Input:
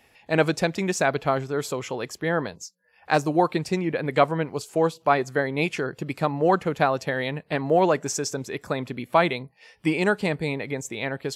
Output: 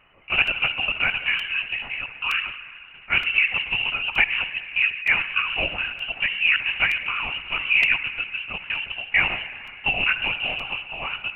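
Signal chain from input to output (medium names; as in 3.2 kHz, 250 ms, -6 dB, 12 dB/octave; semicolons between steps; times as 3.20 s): block-companded coder 5-bit; crackle 370 per s -38 dBFS; distance through air 190 m; tape echo 67 ms, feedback 73%, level -13.5 dB, low-pass 2.2 kHz; on a send at -12 dB: reverberation RT60 2.8 s, pre-delay 48 ms; on the sum: frequency inversion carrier 3 kHz; LPC vocoder at 8 kHz whisper; crackling interface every 0.92 s, samples 128, repeat, from 0.47 s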